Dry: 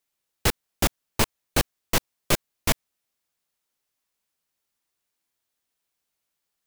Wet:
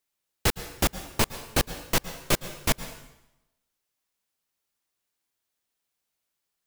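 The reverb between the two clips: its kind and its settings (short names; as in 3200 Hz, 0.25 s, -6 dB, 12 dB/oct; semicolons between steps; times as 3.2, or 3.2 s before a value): plate-style reverb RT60 0.92 s, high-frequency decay 0.9×, pre-delay 0.1 s, DRR 12.5 dB; gain -1.5 dB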